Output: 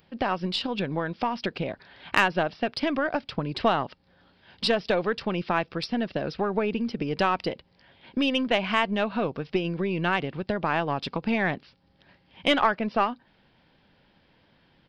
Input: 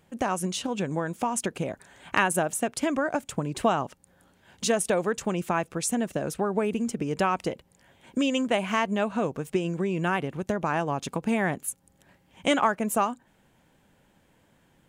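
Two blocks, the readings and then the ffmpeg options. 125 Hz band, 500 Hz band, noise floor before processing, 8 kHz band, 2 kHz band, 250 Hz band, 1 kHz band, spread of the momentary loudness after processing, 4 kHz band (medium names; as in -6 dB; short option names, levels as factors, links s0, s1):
-0.5 dB, 0.0 dB, -64 dBFS, under -15 dB, +2.5 dB, -0.5 dB, +1.0 dB, 7 LU, +5.5 dB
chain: -af "aresample=11025,aresample=44100,crystalizer=i=3:c=0,aeval=exprs='0.631*(cos(1*acos(clip(val(0)/0.631,-1,1)))-cos(1*PI/2))+0.0398*(cos(4*acos(clip(val(0)/0.631,-1,1)))-cos(4*PI/2))+0.0501*(cos(6*acos(clip(val(0)/0.631,-1,1)))-cos(6*PI/2))':c=same"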